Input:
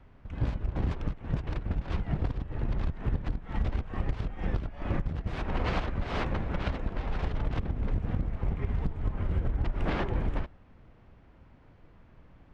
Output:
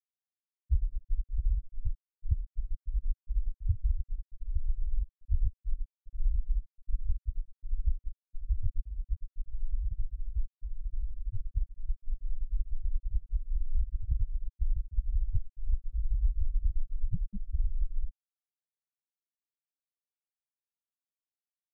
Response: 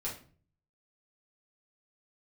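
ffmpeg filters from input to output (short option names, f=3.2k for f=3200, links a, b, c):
-af "afftfilt=real='re*gte(hypot(re,im),0.251)':imag='im*gte(hypot(re,im),0.251)':win_size=1024:overlap=0.75,asetrate=25442,aresample=44100,volume=2.5dB"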